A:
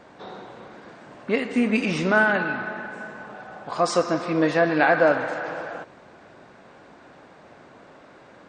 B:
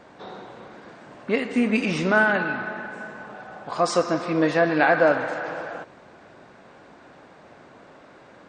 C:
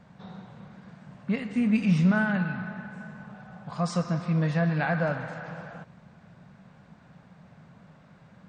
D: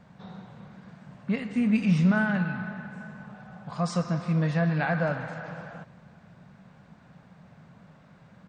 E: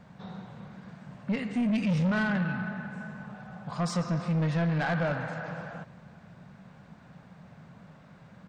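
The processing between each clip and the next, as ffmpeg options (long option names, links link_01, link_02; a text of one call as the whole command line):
ffmpeg -i in.wav -af anull out.wav
ffmpeg -i in.wav -af "lowshelf=frequency=240:width_type=q:width=3:gain=10.5,volume=-9dB" out.wav
ffmpeg -i in.wav -af "aecho=1:1:382:0.0708" out.wav
ffmpeg -i in.wav -af "asoftclip=type=tanh:threshold=-24.5dB,volume=1.5dB" out.wav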